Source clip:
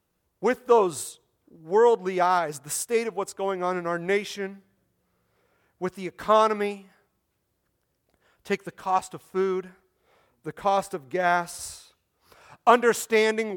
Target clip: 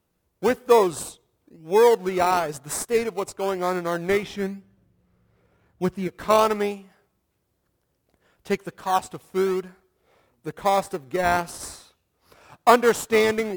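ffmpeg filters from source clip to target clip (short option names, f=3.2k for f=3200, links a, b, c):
-filter_complex "[0:a]asettb=1/sr,asplit=3[a][b][c];[a]atrim=end=4.234[d];[b]atrim=start=4.23:end=6.08,asetpts=PTS-STARTPTS,afade=t=in:d=0.004:c=qsin,afade=t=out:st=1.846:d=0.004:c=qsin,bass=f=250:g=8,treble=f=4k:g=-7[e];[c]atrim=start=6.076[f];[d][e]acrossfade=d=0.004:c1=hsin:c2=qsin[g];[g][f]acrossfade=d=0.004:c1=qsin:c2=hsin,asplit=2[h][i];[i]acrusher=samples=21:mix=1:aa=0.000001:lfo=1:lforange=12.6:lforate=1,volume=-8dB[j];[h][j]amix=inputs=2:normalize=0"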